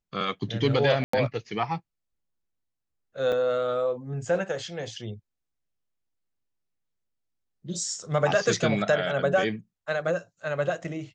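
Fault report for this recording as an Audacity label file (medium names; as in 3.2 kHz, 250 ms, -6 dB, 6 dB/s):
1.040000	1.130000	dropout 94 ms
3.320000	3.330000	dropout 5.9 ms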